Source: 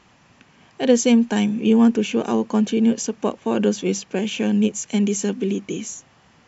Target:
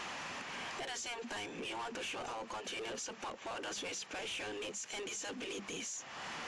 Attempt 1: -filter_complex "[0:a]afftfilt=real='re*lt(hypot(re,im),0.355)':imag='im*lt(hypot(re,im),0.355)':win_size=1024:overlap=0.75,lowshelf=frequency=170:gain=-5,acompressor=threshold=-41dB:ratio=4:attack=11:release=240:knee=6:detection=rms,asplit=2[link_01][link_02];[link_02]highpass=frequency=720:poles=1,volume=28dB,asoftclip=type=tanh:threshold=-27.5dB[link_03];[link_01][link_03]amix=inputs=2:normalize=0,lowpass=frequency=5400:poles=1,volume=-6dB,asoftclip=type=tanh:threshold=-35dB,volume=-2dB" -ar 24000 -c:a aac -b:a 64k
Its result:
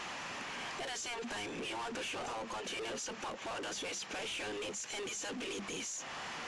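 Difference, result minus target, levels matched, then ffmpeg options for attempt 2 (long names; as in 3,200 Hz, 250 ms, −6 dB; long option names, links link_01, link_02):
downward compressor: peak gain reduction −7 dB
-filter_complex "[0:a]afftfilt=real='re*lt(hypot(re,im),0.355)':imag='im*lt(hypot(re,im),0.355)':win_size=1024:overlap=0.75,lowshelf=frequency=170:gain=-5,acompressor=threshold=-50.5dB:ratio=4:attack=11:release=240:knee=6:detection=rms,asplit=2[link_01][link_02];[link_02]highpass=frequency=720:poles=1,volume=28dB,asoftclip=type=tanh:threshold=-27.5dB[link_03];[link_01][link_03]amix=inputs=2:normalize=0,lowpass=frequency=5400:poles=1,volume=-6dB,asoftclip=type=tanh:threshold=-35dB,volume=-2dB" -ar 24000 -c:a aac -b:a 64k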